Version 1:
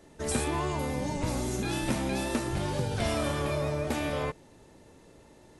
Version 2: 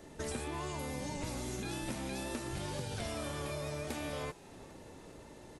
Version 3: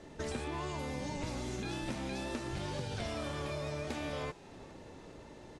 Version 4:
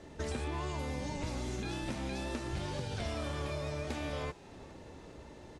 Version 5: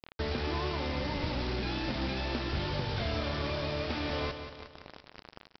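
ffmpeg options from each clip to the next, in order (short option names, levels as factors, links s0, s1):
-filter_complex "[0:a]acrossover=split=1600|4400[s0][s1][s2];[s0]acompressor=threshold=0.00794:ratio=4[s3];[s1]acompressor=threshold=0.002:ratio=4[s4];[s2]acompressor=threshold=0.00251:ratio=4[s5];[s3][s4][s5]amix=inputs=3:normalize=0,asplit=6[s6][s7][s8][s9][s10][s11];[s7]adelay=400,afreqshift=110,volume=0.0794[s12];[s8]adelay=800,afreqshift=220,volume=0.049[s13];[s9]adelay=1200,afreqshift=330,volume=0.0305[s14];[s10]adelay=1600,afreqshift=440,volume=0.0188[s15];[s11]adelay=2000,afreqshift=550,volume=0.0117[s16];[s6][s12][s13][s14][s15][s16]amix=inputs=6:normalize=0,volume=1.33"
-af "lowpass=6100,volume=1.12"
-af "equalizer=f=70:t=o:w=0.54:g=7"
-af "aresample=11025,acrusher=bits=6:mix=0:aa=0.000001,aresample=44100,aecho=1:1:181|362|543|724|905:0.355|0.163|0.0751|0.0345|0.0159,volume=1.5"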